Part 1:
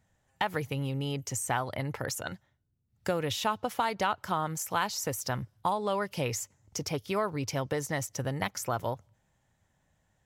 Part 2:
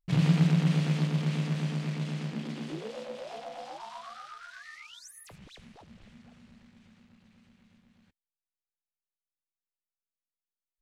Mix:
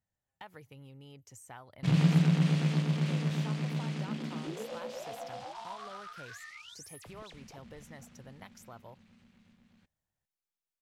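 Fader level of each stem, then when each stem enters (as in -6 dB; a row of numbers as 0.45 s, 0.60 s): -19.0 dB, -1.0 dB; 0.00 s, 1.75 s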